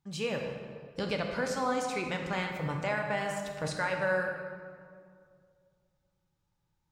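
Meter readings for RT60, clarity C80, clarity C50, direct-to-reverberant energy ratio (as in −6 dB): 2.2 s, 5.5 dB, 4.0 dB, 2.5 dB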